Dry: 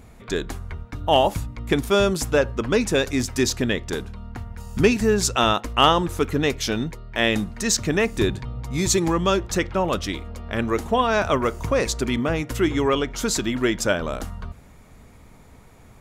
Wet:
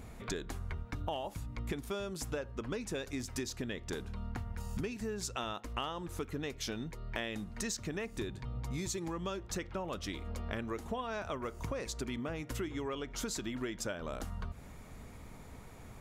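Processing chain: compression 12:1, threshold -33 dBFS, peak gain reduction 22.5 dB; trim -2 dB

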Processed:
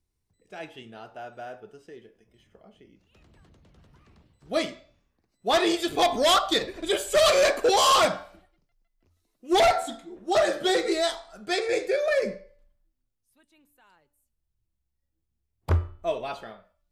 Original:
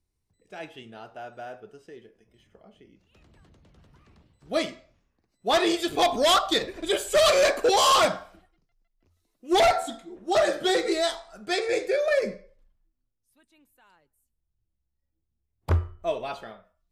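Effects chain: de-hum 289.9 Hz, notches 16

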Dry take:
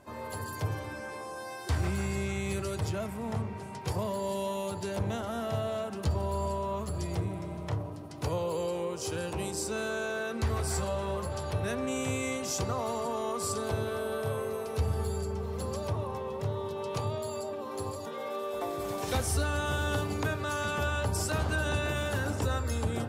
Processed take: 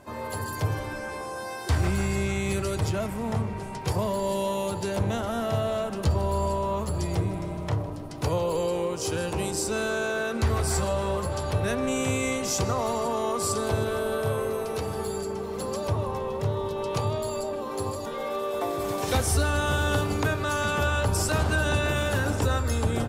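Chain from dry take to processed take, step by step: 14.76–15.88 s: high-pass 180 Hz 12 dB/octave; frequency-shifting echo 156 ms, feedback 64%, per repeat -59 Hz, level -19 dB; trim +5.5 dB

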